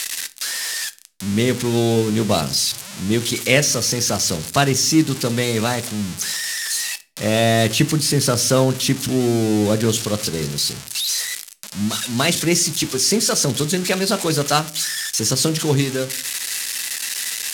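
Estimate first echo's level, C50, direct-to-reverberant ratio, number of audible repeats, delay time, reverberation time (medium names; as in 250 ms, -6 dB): no echo, 20.0 dB, 11.5 dB, no echo, no echo, 0.45 s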